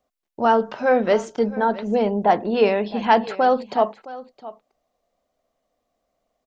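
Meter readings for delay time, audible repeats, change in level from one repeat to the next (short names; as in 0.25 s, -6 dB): 0.666 s, 1, no steady repeat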